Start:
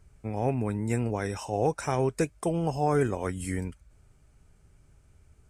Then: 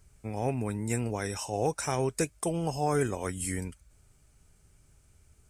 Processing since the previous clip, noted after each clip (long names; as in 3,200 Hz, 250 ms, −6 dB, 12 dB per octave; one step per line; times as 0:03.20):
high-shelf EQ 3,500 Hz +11 dB
level −3 dB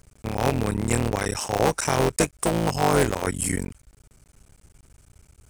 sub-harmonics by changed cycles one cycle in 3, muted
level +9 dB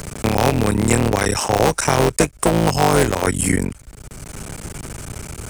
multiband upward and downward compressor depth 70%
level +6.5 dB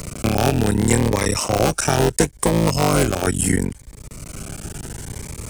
phaser whose notches keep moving one way rising 0.72 Hz